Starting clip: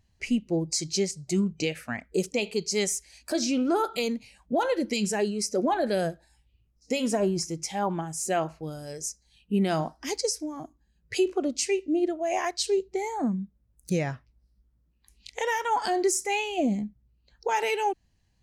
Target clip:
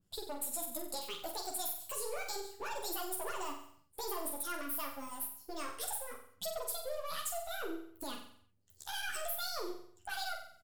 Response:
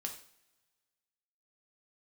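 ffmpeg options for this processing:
-filter_complex "[0:a]aeval=exprs='if(lt(val(0),0),0.447*val(0),val(0))':channel_layout=same,highshelf=frequency=3500:gain=7.5,acompressor=threshold=-29dB:ratio=6,flanger=delay=18.5:depth=4.5:speed=0.35,asoftclip=type=tanh:threshold=-27dB,aecho=1:1:79|158|237|316|395|474|553|632:0.473|0.284|0.17|0.102|0.0613|0.0368|0.0221|0.0132,asplit=2[link_01][link_02];[1:a]atrim=start_sample=2205[link_03];[link_02][link_03]afir=irnorm=-1:irlink=0,volume=-10dB[link_04];[link_01][link_04]amix=inputs=2:normalize=0,asetrate=76440,aresample=44100,adynamicequalizer=threshold=0.00316:dfrequency=2400:dqfactor=0.7:tfrequency=2400:tqfactor=0.7:attack=5:release=100:ratio=0.375:range=2:mode=boostabove:tftype=highshelf,volume=-6.5dB"

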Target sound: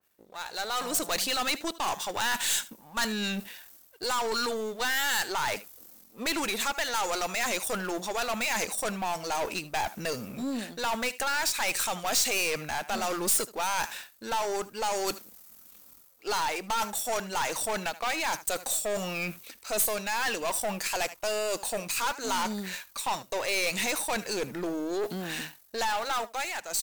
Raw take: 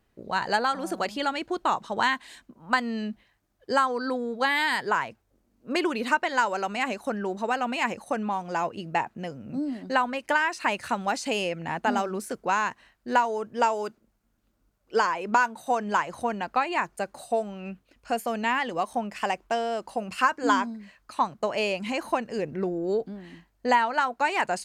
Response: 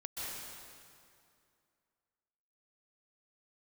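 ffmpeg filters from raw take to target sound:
-af "aeval=exprs='if(lt(val(0),0),0.447*val(0),val(0))':channel_layout=same,areverse,acompressor=threshold=-38dB:ratio=4,areverse,aecho=1:1:71:0.0794,asetrate=40517,aresample=44100,dynaudnorm=framelen=110:gausssize=13:maxgain=16.5dB,aemphasis=mode=production:type=riaa,aeval=exprs='(tanh(17.8*val(0)+0.3)-tanh(0.3))/17.8':channel_layout=same,adynamicequalizer=threshold=0.00794:dfrequency=2700:dqfactor=0.7:tfrequency=2700:tqfactor=0.7:attack=5:release=100:ratio=0.375:range=2:mode=boostabove:tftype=highshelf"

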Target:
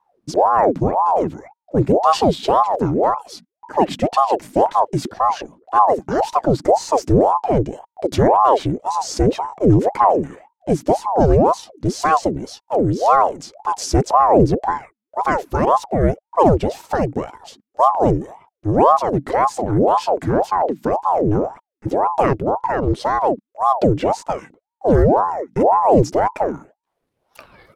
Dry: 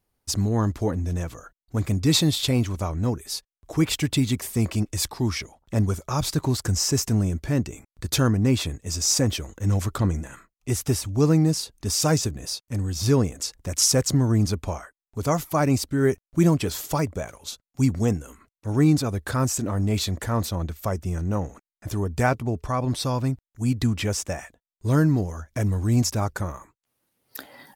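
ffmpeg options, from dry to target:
ffmpeg -i in.wav -af "aemphasis=mode=reproduction:type=bsi,aeval=exprs='val(0)*sin(2*PI*580*n/s+580*0.65/1.9*sin(2*PI*1.9*n/s))':channel_layout=same,volume=2.5dB" out.wav

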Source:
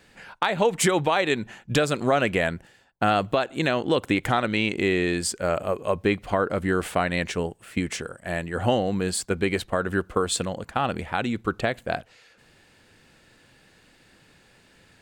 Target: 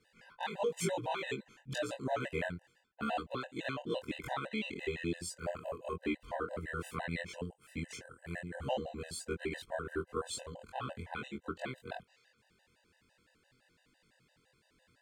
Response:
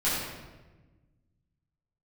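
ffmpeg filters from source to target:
-af "afftfilt=real='re':imag='-im':win_size=2048:overlap=0.75,afftfilt=real='re*gt(sin(2*PI*5.9*pts/sr)*(1-2*mod(floor(b*sr/1024/510),2)),0)':imag='im*gt(sin(2*PI*5.9*pts/sr)*(1-2*mod(floor(b*sr/1024/510),2)),0)':win_size=1024:overlap=0.75,volume=-7dB"

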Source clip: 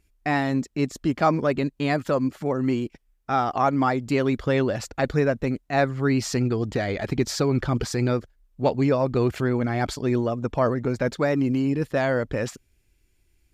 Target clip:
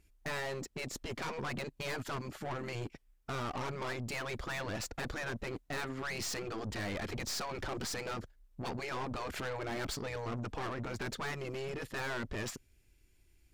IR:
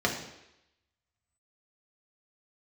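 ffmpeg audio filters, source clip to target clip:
-af "afftfilt=real='re*lt(hypot(re,im),0.282)':imag='im*lt(hypot(re,im),0.282)':win_size=1024:overlap=0.75,aeval=exprs='(tanh(56.2*val(0)+0.45)-tanh(0.45))/56.2':channel_layout=same"

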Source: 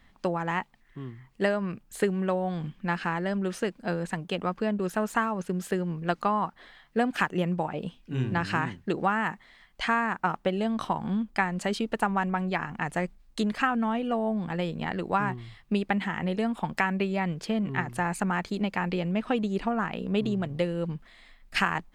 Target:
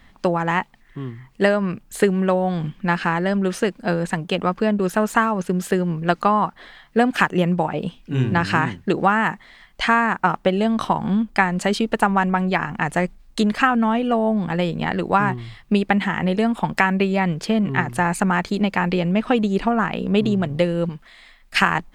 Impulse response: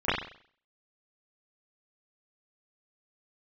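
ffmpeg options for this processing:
-filter_complex "[0:a]asettb=1/sr,asplit=3[link_01][link_02][link_03];[link_01]atrim=end=20.894[link_04];[link_02]atrim=start=20.89:end=21.62,asetpts=PTS-STARTPTS,afade=type=in:duration=0.004:curve=qsin,afade=type=out:start_time=0.726:duration=0.004:curve=qsin,lowshelf=frequency=500:gain=-8[link_05];[link_03]atrim=start=21.616[link_06];[link_04][link_05]acrossfade=duration=0.004:curve1=hsin:curve2=qsin[link_07];[link_07][link_06]acrossfade=duration=0.004:curve1=qsin:curve2=hsin,volume=8.5dB"

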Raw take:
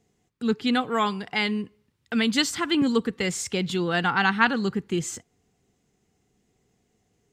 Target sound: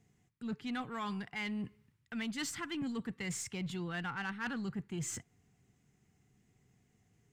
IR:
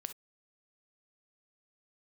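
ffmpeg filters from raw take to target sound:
-af "equalizer=frequency=125:width_type=o:width=1:gain=8,equalizer=frequency=500:width_type=o:width=1:gain=-6,equalizer=frequency=2000:width_type=o:width=1:gain=4,equalizer=frequency=4000:width_type=o:width=1:gain=-4,areverse,acompressor=threshold=-33dB:ratio=4,areverse,asoftclip=type=tanh:threshold=-26dB,aeval=exprs='0.0473*(cos(1*acos(clip(val(0)/0.0473,-1,1)))-cos(1*PI/2))+0.00075*(cos(8*acos(clip(val(0)/0.0473,-1,1)))-cos(8*PI/2))':channel_layout=same,volume=-3.5dB"

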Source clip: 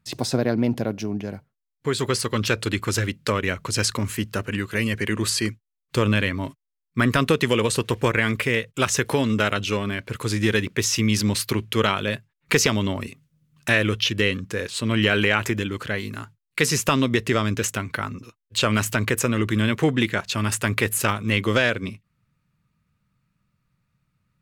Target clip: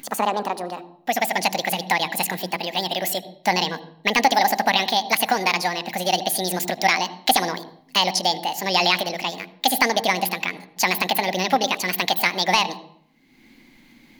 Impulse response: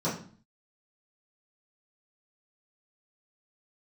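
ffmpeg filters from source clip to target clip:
-filter_complex "[0:a]asetrate=75852,aresample=44100,equalizer=frequency=86:width=0.4:gain=-14,acompressor=mode=upward:threshold=-36dB:ratio=2.5,equalizer=frequency=250:width_type=o:width=0.33:gain=5,equalizer=frequency=400:width_type=o:width=0.33:gain=-8,equalizer=frequency=800:width_type=o:width=0.33:gain=6,equalizer=frequency=2000:width_type=o:width=0.33:gain=6,equalizer=frequency=8000:width_type=o:width=0.33:gain=-9,asplit=2[link_01][link_02];[1:a]atrim=start_sample=2205,asetrate=30870,aresample=44100,adelay=76[link_03];[link_02][link_03]afir=irnorm=-1:irlink=0,volume=-26dB[link_04];[link_01][link_04]amix=inputs=2:normalize=0,volume=1.5dB"

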